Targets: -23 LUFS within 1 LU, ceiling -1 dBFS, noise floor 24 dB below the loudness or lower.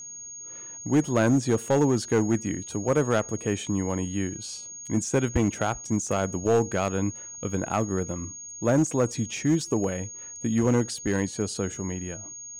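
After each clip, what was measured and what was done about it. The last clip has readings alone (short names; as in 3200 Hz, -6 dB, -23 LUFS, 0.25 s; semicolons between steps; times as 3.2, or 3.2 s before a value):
clipped 1.1%; flat tops at -15.5 dBFS; steady tone 6600 Hz; tone level -38 dBFS; loudness -26.5 LUFS; peak -15.5 dBFS; loudness target -23.0 LUFS
-> clip repair -15.5 dBFS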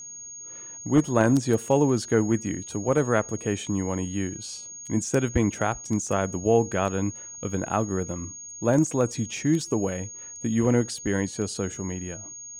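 clipped 0.0%; steady tone 6600 Hz; tone level -38 dBFS
-> notch 6600 Hz, Q 30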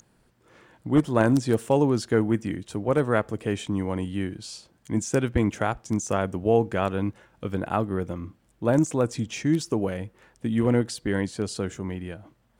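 steady tone none; loudness -26.0 LUFS; peak -6.5 dBFS; loudness target -23.0 LUFS
-> gain +3 dB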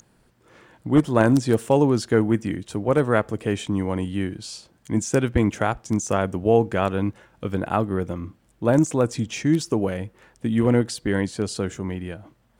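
loudness -23.0 LUFS; peak -3.5 dBFS; noise floor -61 dBFS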